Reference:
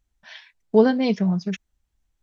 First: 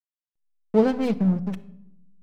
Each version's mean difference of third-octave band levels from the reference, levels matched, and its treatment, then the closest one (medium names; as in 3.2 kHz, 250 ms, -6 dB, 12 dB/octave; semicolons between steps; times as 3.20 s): 6.0 dB: peaking EQ 83 Hz +13.5 dB 1.1 oct; hysteresis with a dead band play -22 dBFS; simulated room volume 2400 m³, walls furnished, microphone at 0.7 m; trim -3 dB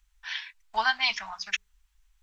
12.5 dB: inverse Chebyshev band-stop 100–530 Hz, stop band 40 dB; peaking EQ 2.7 kHz +2.5 dB 0.77 oct; hum notches 60/120/180/240/300/360/420/480/540 Hz; trim +7 dB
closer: first